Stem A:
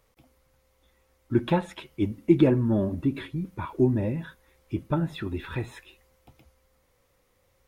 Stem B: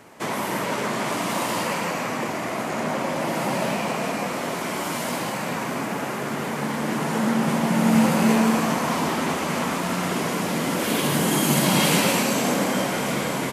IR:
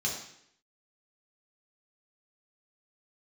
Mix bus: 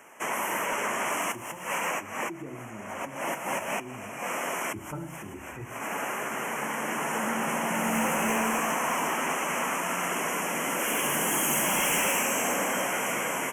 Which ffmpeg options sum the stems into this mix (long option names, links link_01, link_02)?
-filter_complex "[0:a]volume=-12.5dB,afade=type=in:start_time=4.36:duration=0.39:silence=0.266073,asplit=3[link_01][link_02][link_03];[link_02]volume=-6dB[link_04];[1:a]highpass=frequency=900:poles=1,asoftclip=type=hard:threshold=-22dB,volume=0.5dB[link_05];[link_03]apad=whole_len=596267[link_06];[link_05][link_06]sidechaincompress=threshold=-58dB:ratio=10:attack=6.2:release=135[link_07];[2:a]atrim=start_sample=2205[link_08];[link_04][link_08]afir=irnorm=-1:irlink=0[link_09];[link_01][link_07][link_09]amix=inputs=3:normalize=0,asuperstop=centerf=4200:order=8:qfactor=1.6"